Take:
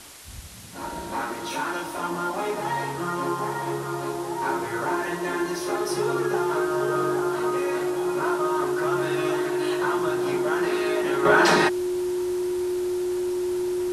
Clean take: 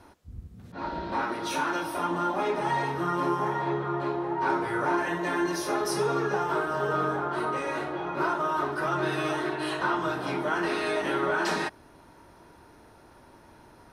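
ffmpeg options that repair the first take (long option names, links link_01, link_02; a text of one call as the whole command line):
ffmpeg -i in.wav -af "bandreject=frequency=360:width=30,afwtdn=0.0071,asetnsamples=nb_out_samples=441:pad=0,asendcmd='11.25 volume volume -9.5dB',volume=0dB" out.wav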